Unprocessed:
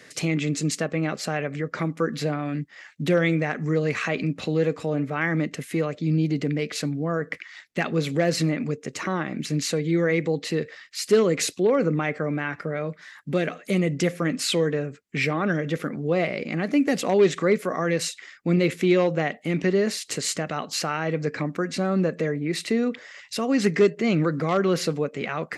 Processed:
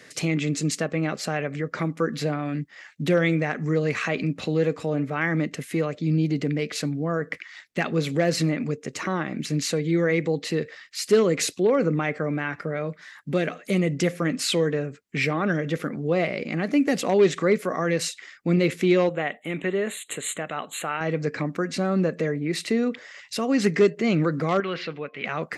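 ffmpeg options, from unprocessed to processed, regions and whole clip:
-filter_complex "[0:a]asettb=1/sr,asplit=3[s0][s1][s2];[s0]atrim=end=19.094[s3];[s1]atrim=start=19.09:end=21.01,asetpts=PTS-STARTPTS,afade=t=in:d=0.004:c=qsin,afade=t=out:st=1.916:d=0.004:c=qsin,asuperstop=centerf=5200:order=8:qfactor=1.7,lowshelf=f=310:g=-9.5[s4];[s2]atrim=start=21.006[s5];[s3][s4]acrossfade=d=0.004:c1=hsin:c2=qsin[s6];[s6][s5]acrossfade=d=0.004:c1=qsin:c2=hsin,asettb=1/sr,asplit=3[s7][s8][s9];[s7]atrim=end=24.604[s10];[s8]atrim=start=24.6:end=25.25,asetpts=PTS-STARTPTS,afade=t=in:d=0.004:c=qsin,afade=t=out:st=0.646:d=0.004:c=qsin,lowpass=f=2900:w=0.5412,lowpass=f=2900:w=1.3066,tiltshelf=f=1400:g=-10,bandreject=f=354.1:t=h:w=4,bandreject=f=708.2:t=h:w=4,bandreject=f=1062.3:t=h:w=4[s11];[s9]atrim=start=25.246[s12];[s10][s11]acrossfade=d=0.004:c1=hsin:c2=qsin[s13];[s13][s12]acrossfade=d=0.004:c1=qsin:c2=hsin"

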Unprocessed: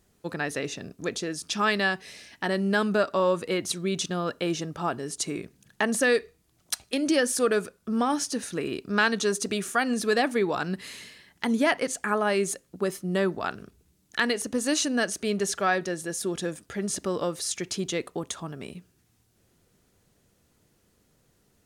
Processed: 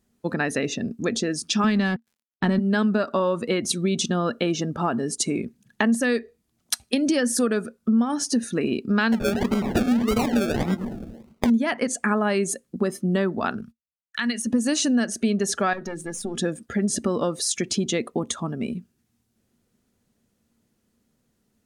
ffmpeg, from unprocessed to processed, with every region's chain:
-filter_complex "[0:a]asettb=1/sr,asplit=3[s0][s1][s2];[s0]atrim=end=1.644[s3];[s1]atrim=start=1.64:end=2.59,asetpts=PTS-STARTPTS,afade=t=in:d=0.004:c=qsin,afade=t=out:st=0.946:d=0.004:c=qsin,bass=f=250:g=15,treble=f=4000:g=-1,aeval=exprs='sgn(val(0))*max(abs(val(0))-0.015,0)':c=same[s4];[s2]atrim=start=2.586[s5];[s3][s4]acrossfade=d=0.004:c1=hsin:c2=qsin[s6];[s6][s5]acrossfade=d=0.004:c1=qsin:c2=hsin,asettb=1/sr,asplit=3[s7][s8][s9];[s7]atrim=end=9.124[s10];[s8]atrim=start=9.12:end=11.5,asetpts=PTS-STARTPTS,afade=t=in:d=0.004:c=qsin,afade=t=out:st=2.376:d=0.004:c=qsin,aecho=1:1:102|204|306|408:0.316|0.104|0.0344|0.0114,atrim=end_sample=104958,acrusher=samples=35:mix=1:aa=0.000001:lfo=1:lforange=21:lforate=1.7[s11];[s9]atrim=start=11.496[s12];[s10][s11]acrossfade=d=0.004:c1=hsin:c2=qsin[s13];[s13][s12]acrossfade=d=0.004:c1=qsin:c2=hsin,asettb=1/sr,asplit=3[s14][s15][s16];[s14]atrim=end=13.614[s17];[s15]atrim=start=13.61:end=14.47,asetpts=PTS-STARTPTS,afade=t=in:d=0.004:c=qsin,afade=t=out:st=0.856:d=0.004:c=qsin,agate=range=0.0126:threshold=0.00178:ratio=16:release=100:detection=peak,equalizer=f=400:w=0.84:g=-14,acompressor=threshold=0.0224:ratio=2:attack=3.2:release=140:knee=1:detection=peak[s18];[s16]atrim=start=14.466[s19];[s17][s18]acrossfade=d=0.004:c1=hsin:c2=qsin[s20];[s20][s19]acrossfade=d=0.004:c1=qsin:c2=hsin,asettb=1/sr,asplit=3[s21][s22][s23];[s21]atrim=end=15.734[s24];[s22]atrim=start=15.73:end=16.37,asetpts=PTS-STARTPTS,afade=t=in:d=0.004:c=qsin,afade=t=out:st=0.636:d=0.004:c=qsin,aeval=exprs='(tanh(12.6*val(0)+0.75)-tanh(0.75))/12.6':c=same,acompressor=threshold=0.0224:ratio=2.5:attack=3.2:release=140:knee=1:detection=peak,bandreject=f=60:t=h:w=6,bandreject=f=120:t=h:w=6,bandreject=f=180:t=h:w=6,bandreject=f=240:t=h:w=6,bandreject=f=300:t=h:w=6,bandreject=f=360:t=h:w=6,bandreject=f=420:t=h:w=6,bandreject=f=480:t=h:w=6[s25];[s23]atrim=start=16.366[s26];[s24][s25]acrossfade=d=0.004:c1=hsin:c2=qsin[s27];[s27][s26]acrossfade=d=0.004:c1=qsin:c2=hsin,afftdn=nr=13:nf=-43,equalizer=f=230:w=5:g=13.5,acompressor=threshold=0.0501:ratio=4,volume=2.11"

